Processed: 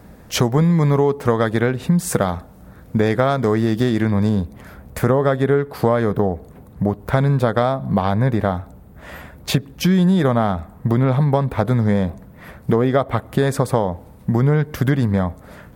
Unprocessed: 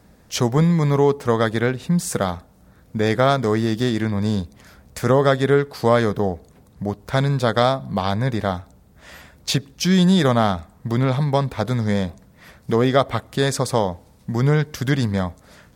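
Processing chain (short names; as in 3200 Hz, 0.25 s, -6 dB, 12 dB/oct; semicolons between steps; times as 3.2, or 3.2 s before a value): bell 5500 Hz -7.5 dB 1.9 oct, from 4.29 s -14 dB; compressor 4:1, threshold -23 dBFS, peak gain reduction 10.5 dB; gain +9 dB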